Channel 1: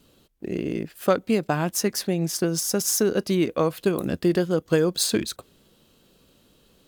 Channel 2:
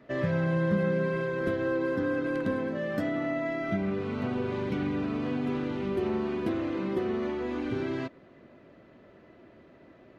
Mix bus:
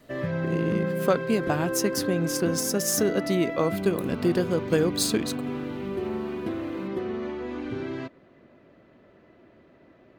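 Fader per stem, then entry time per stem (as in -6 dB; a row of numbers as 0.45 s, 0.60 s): -2.5 dB, -1.0 dB; 0.00 s, 0.00 s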